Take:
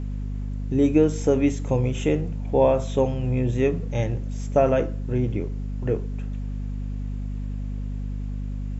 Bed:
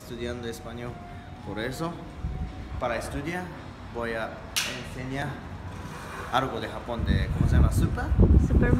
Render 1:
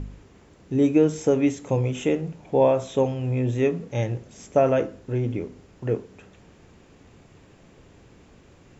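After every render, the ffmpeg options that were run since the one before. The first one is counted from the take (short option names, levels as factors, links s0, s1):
-af "bandreject=f=50:t=h:w=4,bandreject=f=100:t=h:w=4,bandreject=f=150:t=h:w=4,bandreject=f=200:t=h:w=4,bandreject=f=250:t=h:w=4"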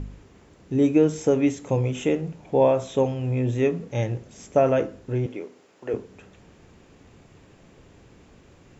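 -filter_complex "[0:a]asettb=1/sr,asplit=3[s0][s1][s2];[s0]atrim=end=5.264[s3];[s1]atrim=start=5.26:end=5.94,asetpts=PTS-STARTPTS,afade=t=in:d=0.004:c=qsin,afade=t=out:st=0.676:d=0.004:c=qsin,highpass=380[s4];[s2]atrim=start=5.936[s5];[s3][s4]acrossfade=d=0.004:c1=hsin:c2=qsin[s6];[s6][s5]acrossfade=d=0.004:c1=qsin:c2=hsin"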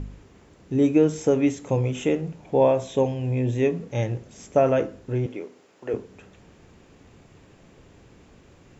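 -filter_complex "[0:a]asettb=1/sr,asplit=3[s0][s1][s2];[s0]atrim=end=2.724[s3];[s1]atrim=start=2.72:end=3.76,asetpts=PTS-STARTPTS,afade=t=in:d=0.004:c=qsin,afade=t=out:st=1.036:d=0.004:c=qsin,bandreject=f=1300:w=5.3[s4];[s2]atrim=start=3.756[s5];[s3][s4]acrossfade=d=0.004:c1=hsin:c2=qsin[s6];[s6][s5]acrossfade=d=0.004:c1=qsin:c2=hsin"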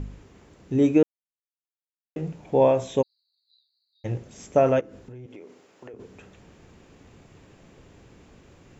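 -filter_complex "[0:a]asplit=3[s0][s1][s2];[s0]afade=t=out:st=3.01:d=0.02[s3];[s1]asuperpass=centerf=4300:order=12:qfactor=5,afade=t=in:st=3.01:d=0.02,afade=t=out:st=4.04:d=0.02[s4];[s2]afade=t=in:st=4.04:d=0.02[s5];[s3][s4][s5]amix=inputs=3:normalize=0,asplit=3[s6][s7][s8];[s6]afade=t=out:st=4.79:d=0.02[s9];[s7]acompressor=threshold=0.0112:ratio=10:attack=3.2:release=140:knee=1:detection=peak,afade=t=in:st=4.79:d=0.02,afade=t=out:st=5.99:d=0.02[s10];[s8]afade=t=in:st=5.99:d=0.02[s11];[s9][s10][s11]amix=inputs=3:normalize=0,asplit=3[s12][s13][s14];[s12]atrim=end=1.03,asetpts=PTS-STARTPTS,afade=t=out:st=1.026:d=0.004:c=hsin[s15];[s13]atrim=start=1.03:end=2.16,asetpts=PTS-STARTPTS,volume=0[s16];[s14]atrim=start=2.16,asetpts=PTS-STARTPTS,afade=t=in:d=0.004:c=hsin[s17];[s15][s16][s17]concat=n=3:v=0:a=1"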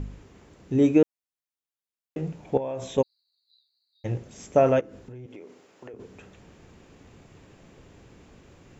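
-filter_complex "[0:a]asettb=1/sr,asplit=3[s0][s1][s2];[s0]atrim=end=2.574[s3];[s1]atrim=start=2.57:end=2.98,asetpts=PTS-STARTPTS,afade=t=in:d=0.004:c=qsin,afade=t=out:st=0.406:d=0.004:c=qsin,acompressor=threshold=0.0398:ratio=8:attack=3.2:release=140:knee=1:detection=peak[s4];[s2]atrim=start=2.976[s5];[s3][s4]acrossfade=d=0.004:c1=hsin:c2=qsin[s6];[s6][s5]acrossfade=d=0.004:c1=qsin:c2=hsin"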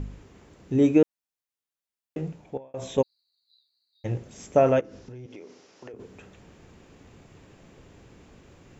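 -filter_complex "[0:a]asettb=1/sr,asplit=3[s0][s1][s2];[s0]atrim=end=4.844[s3];[s1]atrim=start=4.84:end=5.92,asetpts=PTS-STARTPTS,afade=t=in:d=0.004:c=qsin,afade=t=out:st=1.076:d=0.004:c=qsin,lowpass=f=5600:t=q:w=3.1[s4];[s2]atrim=start=5.916[s5];[s3][s4]acrossfade=d=0.004:c1=hsin:c2=qsin[s6];[s6][s5]acrossfade=d=0.004:c1=qsin:c2=hsin,asplit=2[s7][s8];[s7]atrim=end=2.74,asetpts=PTS-STARTPTS,afade=t=out:st=2.17:d=0.57[s9];[s8]atrim=start=2.74,asetpts=PTS-STARTPTS,afade=t=in:d=0.004:c=hsin[s10];[s9][s10]concat=n=2:v=0:a=1"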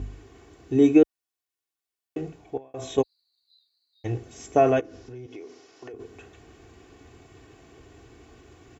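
-af "highpass=46,aecho=1:1:2.7:0.68"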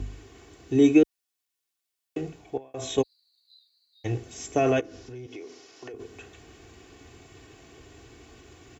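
-filter_complex "[0:a]acrossover=split=380|2100[s0][s1][s2];[s1]alimiter=limit=0.112:level=0:latency=1[s3];[s2]acontrast=32[s4];[s0][s3][s4]amix=inputs=3:normalize=0"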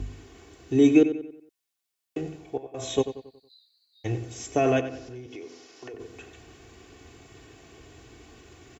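-filter_complex "[0:a]asplit=2[s0][s1];[s1]adelay=92,lowpass=f=4000:p=1,volume=0.282,asplit=2[s2][s3];[s3]adelay=92,lowpass=f=4000:p=1,volume=0.44,asplit=2[s4][s5];[s5]adelay=92,lowpass=f=4000:p=1,volume=0.44,asplit=2[s6][s7];[s7]adelay=92,lowpass=f=4000:p=1,volume=0.44,asplit=2[s8][s9];[s9]adelay=92,lowpass=f=4000:p=1,volume=0.44[s10];[s0][s2][s4][s6][s8][s10]amix=inputs=6:normalize=0"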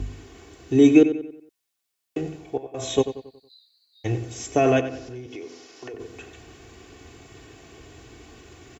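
-af "volume=1.5"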